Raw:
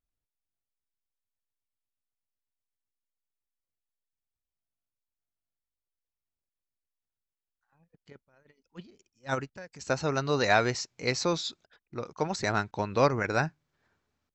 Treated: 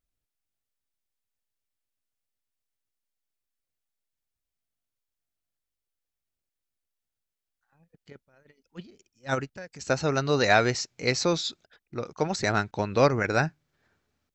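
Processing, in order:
parametric band 1,000 Hz −4.5 dB 0.44 octaves
level +3.5 dB

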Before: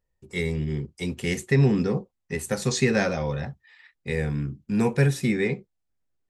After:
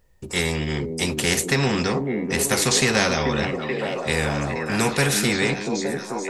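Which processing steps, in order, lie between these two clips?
echo through a band-pass that steps 434 ms, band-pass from 290 Hz, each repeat 0.7 octaves, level −2 dB
every bin compressed towards the loudest bin 2 to 1
level +3.5 dB

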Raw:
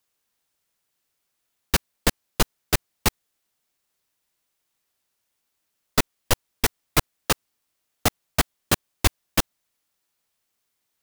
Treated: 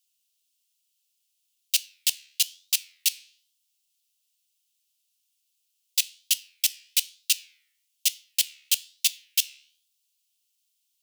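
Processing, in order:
elliptic high-pass filter 2,800 Hz, stop band 80 dB
flanger 1.1 Hz, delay 9.6 ms, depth 5.1 ms, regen −88%
on a send: convolution reverb RT60 0.40 s, pre-delay 5 ms, DRR 17.5 dB
on the sum: level +7.5 dB

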